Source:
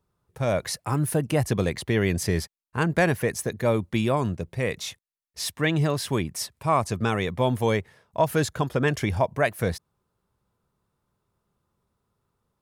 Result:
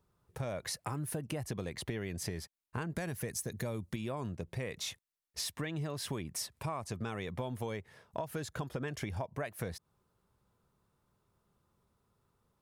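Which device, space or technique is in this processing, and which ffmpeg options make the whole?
serial compression, peaks first: -filter_complex "[0:a]asettb=1/sr,asplit=3[s0][s1][s2];[s0]atrim=end=2.964[s3];[s1]atrim=start=2.96:end=3.96,asetpts=PTS-STARTPTS,afade=t=in:d=0.004:c=qsin,afade=t=out:st=0.996:d=0.004:c=qsin,bass=f=250:g=5,treble=f=4000:g=9[s4];[s2]atrim=start=3.956[s5];[s3][s4]acrossfade=d=0.004:c1=hsin:c2=qsin[s6];[s6][s5]acrossfade=d=0.004:c1=qsin:c2=hsin,acompressor=threshold=0.0316:ratio=6,acompressor=threshold=0.0126:ratio=2"

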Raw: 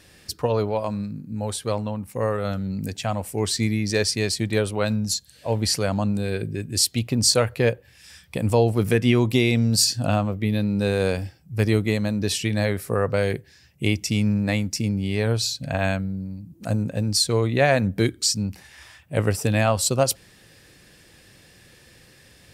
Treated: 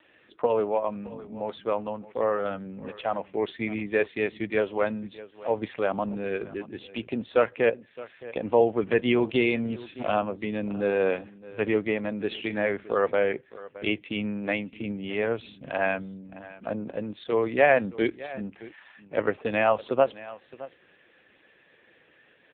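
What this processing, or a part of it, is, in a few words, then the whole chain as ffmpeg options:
satellite phone: -af "highpass=330,lowpass=3200,aecho=1:1:616:0.126,volume=1.12" -ar 8000 -c:a libopencore_amrnb -b:a 5900

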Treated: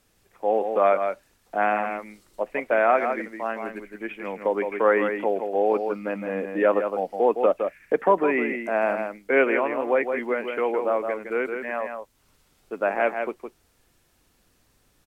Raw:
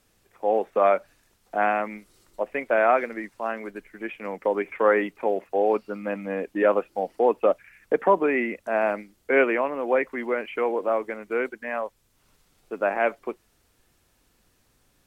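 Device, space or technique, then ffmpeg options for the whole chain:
ducked delay: -filter_complex "[0:a]asplit=3[s0][s1][s2];[s1]adelay=163,volume=0.501[s3];[s2]apad=whole_len=671403[s4];[s3][s4]sidechaincompress=threshold=0.0631:ratio=8:attack=40:release=157[s5];[s0][s5]amix=inputs=2:normalize=0"

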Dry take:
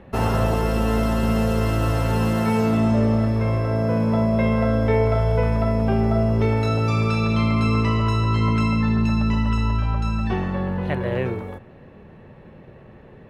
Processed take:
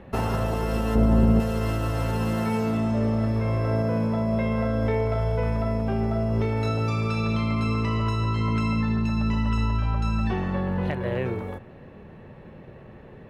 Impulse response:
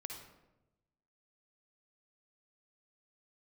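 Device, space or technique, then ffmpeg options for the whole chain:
clipper into limiter: -filter_complex "[0:a]asoftclip=type=hard:threshold=0.299,alimiter=limit=0.15:level=0:latency=1:release=262,asettb=1/sr,asplit=3[s0][s1][s2];[s0]atrim=end=0.954[s3];[s1]atrim=start=0.95:end=1.4,asetpts=PTS-STARTPTS,afade=t=in:d=0.004:c=qsin,afade=t=out:st=0.446:d=0.004:c=qsin,tiltshelf=f=970:g=8[s4];[s2]atrim=start=1.396[s5];[s3][s4]acrossfade=d=0.004:c1=hsin:c2=qsin[s6];[s6][s5]acrossfade=d=0.004:c1=qsin:c2=hsin"

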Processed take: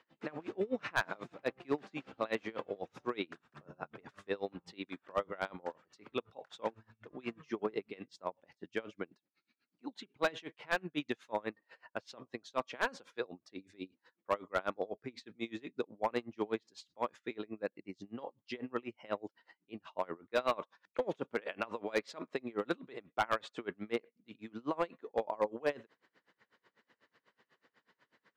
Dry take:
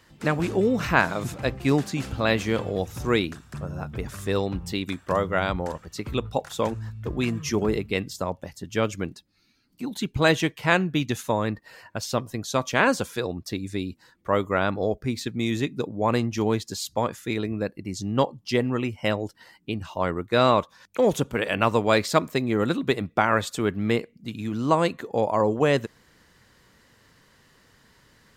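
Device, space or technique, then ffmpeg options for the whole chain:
helicopter radio: -af "highpass=320,lowpass=3000,aeval=exprs='val(0)*pow(10,-28*(0.5-0.5*cos(2*PI*8.1*n/s))/20)':c=same,asoftclip=type=hard:threshold=0.126,volume=0.596"

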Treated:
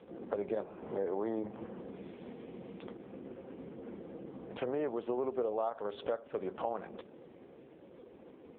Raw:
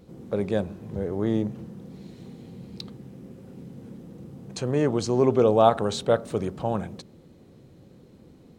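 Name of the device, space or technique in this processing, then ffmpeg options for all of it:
voicemail: -filter_complex "[0:a]asettb=1/sr,asplit=3[s0][s1][s2];[s0]atrim=end=0.554[s3];[s1]atrim=start=0.55:end=1.81,asetpts=PTS-STARTPTS,afade=t=in:d=0.004:c=qsin,afade=t=out:st=1.256:d=0.004:c=qsin,adynamicequalizer=threshold=0.00501:dfrequency=920:dqfactor=1.8:tfrequency=920:tqfactor=1.8:attack=5:release=100:ratio=0.375:range=3:mode=boostabove:tftype=bell[s4];[s2]atrim=start=1.806[s5];[s3][s4]acrossfade=d=0.004:c1=hsin:c2=qsin[s6];[s6][s5]acrossfade=d=0.004:c1=qsin:c2=hsin,highpass=400,lowpass=2700,acompressor=threshold=0.0141:ratio=10,volume=2.11" -ar 8000 -c:a libopencore_amrnb -b:a 4750

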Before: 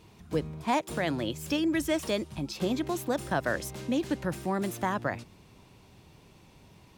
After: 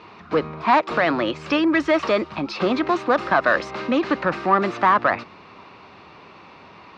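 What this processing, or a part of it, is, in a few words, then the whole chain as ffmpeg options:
overdrive pedal into a guitar cabinet: -filter_complex "[0:a]asplit=2[s0][s1];[s1]highpass=f=720:p=1,volume=6.31,asoftclip=type=tanh:threshold=0.178[s2];[s0][s2]amix=inputs=2:normalize=0,lowpass=f=6100:p=1,volume=0.501,highpass=80,equalizer=f=130:t=q:w=4:g=-7,equalizer=f=1200:t=q:w=4:g=9,equalizer=f=3300:t=q:w=4:g=-8,lowpass=f=4000:w=0.5412,lowpass=f=4000:w=1.3066,volume=2"

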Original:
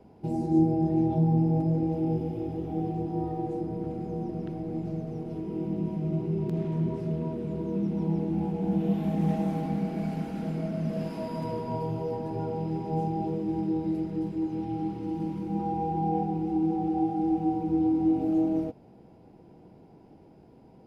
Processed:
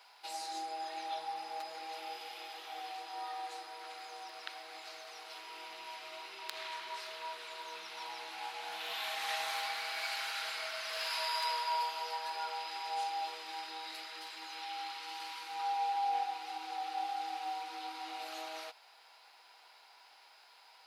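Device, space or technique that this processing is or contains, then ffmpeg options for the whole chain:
headphones lying on a table: -af "highpass=f=1200:w=0.5412,highpass=f=1200:w=1.3066,equalizer=f=4100:t=o:w=0.53:g=10,volume=4.22"

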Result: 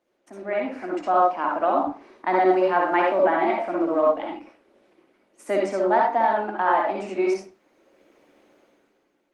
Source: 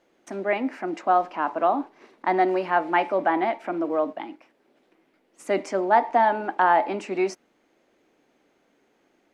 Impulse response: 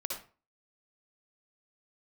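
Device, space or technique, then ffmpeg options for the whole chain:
far-field microphone of a smart speaker: -filter_complex "[1:a]atrim=start_sample=2205[s0];[0:a][s0]afir=irnorm=-1:irlink=0,highpass=f=160:w=0.5412,highpass=f=160:w=1.3066,dynaudnorm=f=110:g=13:m=5.62,volume=0.447" -ar 48000 -c:a libopus -b:a 24k

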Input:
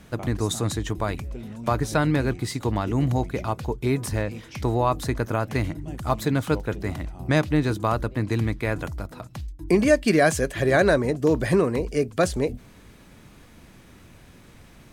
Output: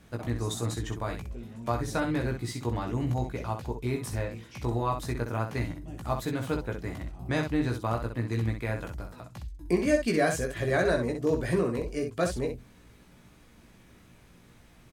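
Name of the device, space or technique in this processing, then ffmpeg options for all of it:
slapback doubling: -filter_complex "[0:a]asplit=3[s0][s1][s2];[s1]adelay=17,volume=0.631[s3];[s2]adelay=63,volume=0.473[s4];[s0][s3][s4]amix=inputs=3:normalize=0,volume=0.376"

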